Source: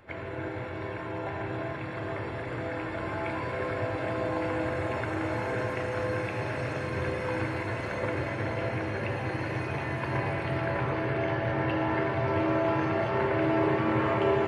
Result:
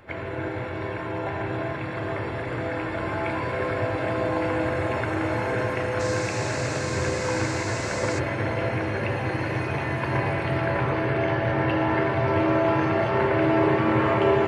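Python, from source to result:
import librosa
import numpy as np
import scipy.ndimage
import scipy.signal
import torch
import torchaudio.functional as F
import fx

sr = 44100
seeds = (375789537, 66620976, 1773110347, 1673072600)

y = fx.dmg_noise_band(x, sr, seeds[0], low_hz=3800.0, high_hz=7900.0, level_db=-45.0, at=(5.99, 8.18), fade=0.02)
y = y * 10.0 ** (5.0 / 20.0)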